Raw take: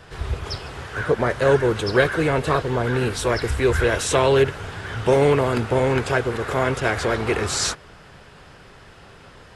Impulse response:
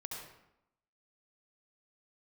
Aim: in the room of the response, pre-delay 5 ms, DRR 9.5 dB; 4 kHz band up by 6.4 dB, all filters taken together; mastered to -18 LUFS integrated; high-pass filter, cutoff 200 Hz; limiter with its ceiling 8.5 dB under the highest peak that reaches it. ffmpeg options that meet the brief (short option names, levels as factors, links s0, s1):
-filter_complex "[0:a]highpass=200,equalizer=f=4000:t=o:g=8,alimiter=limit=0.251:level=0:latency=1,asplit=2[s0][s1];[1:a]atrim=start_sample=2205,adelay=5[s2];[s1][s2]afir=irnorm=-1:irlink=0,volume=0.376[s3];[s0][s3]amix=inputs=2:normalize=0,volume=1.68"